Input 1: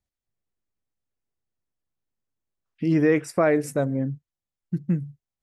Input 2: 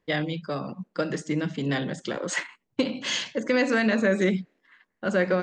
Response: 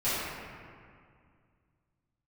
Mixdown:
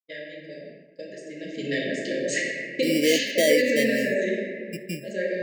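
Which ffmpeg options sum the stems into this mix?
-filter_complex "[0:a]acrusher=samples=17:mix=1:aa=0.000001,volume=0dB[a];[1:a]bandreject=f=3.3k:w=10,volume=-2.5dB,afade=t=in:st=1.32:d=0.29:silence=0.251189,afade=t=out:st=3.49:d=0.63:silence=0.473151,asplit=2[b][c];[c]volume=-5.5dB[d];[2:a]atrim=start_sample=2205[e];[d][e]afir=irnorm=-1:irlink=0[f];[a][b][f]amix=inputs=3:normalize=0,afftfilt=real='re*(1-between(b*sr/4096,670,1600))':imag='im*(1-between(b*sr/4096,670,1600))':win_size=4096:overlap=0.75,highpass=330,agate=range=-33dB:threshold=-42dB:ratio=3:detection=peak"

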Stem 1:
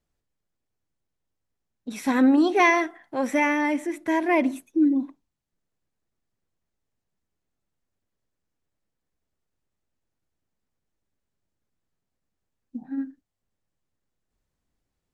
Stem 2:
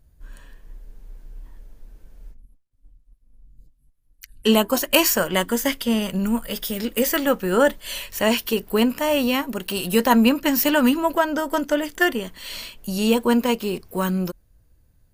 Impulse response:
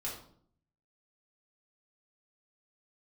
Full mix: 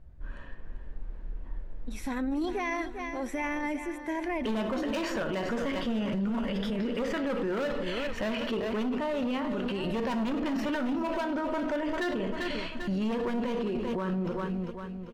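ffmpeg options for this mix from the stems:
-filter_complex "[0:a]volume=-7.5dB,asplit=2[a][b];[b]volume=-12.5dB[c];[1:a]lowpass=2.1k,volume=18.5dB,asoftclip=hard,volume=-18.5dB,volume=1dB,asplit=3[d][e][f];[e]volume=-5dB[g];[f]volume=-10.5dB[h];[2:a]atrim=start_sample=2205[i];[g][i]afir=irnorm=-1:irlink=0[j];[c][h]amix=inputs=2:normalize=0,aecho=0:1:395|790|1185|1580|1975|2370:1|0.45|0.202|0.0911|0.041|0.0185[k];[a][d][j][k]amix=inputs=4:normalize=0,alimiter=level_in=0.5dB:limit=-24dB:level=0:latency=1:release=13,volume=-0.5dB"

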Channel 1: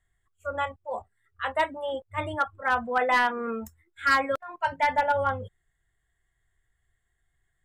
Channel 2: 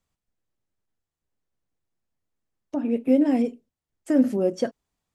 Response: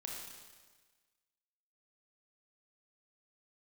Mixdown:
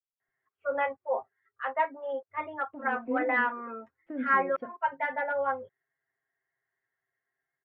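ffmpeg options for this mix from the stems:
-filter_complex "[0:a]highpass=330,aecho=1:1:7.5:0.79,adelay=200,volume=-6.5dB,afade=t=out:st=1.12:d=0.47:silence=0.473151[a];[1:a]acrusher=bits=9:dc=4:mix=0:aa=0.000001,flanger=delay=2.1:depth=2.4:regen=80:speed=1.8:shape=triangular,volume=-20dB[b];[a][b]amix=inputs=2:normalize=0,lowpass=f=2.2k:w=0.5412,lowpass=f=2.2k:w=1.3066,dynaudnorm=f=180:g=5:m=8dB"

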